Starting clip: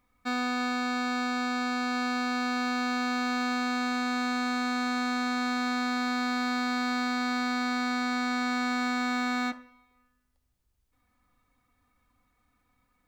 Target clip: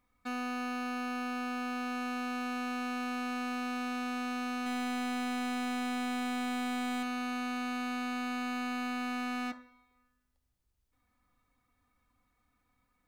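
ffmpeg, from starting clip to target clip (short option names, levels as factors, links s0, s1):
-filter_complex "[0:a]asettb=1/sr,asplit=3[s0][s1][s2];[s0]atrim=end=4.664[s3];[s1]atrim=start=4.66:end=7.03,asetpts=PTS-STARTPTS,afade=t=in:d=0.004:c=qsin,afade=t=out:st=2.366:d=0.004:c=qsin,acontrast=82[s4];[s2]atrim=start=7.026[s5];[s3][s4]acrossfade=d=0.004:c1=hsin:c2=qsin[s6];[s6][s5]acrossfade=d=0.004:c1=qsin:c2=hsin,asoftclip=type=hard:threshold=0.0335,volume=0.631"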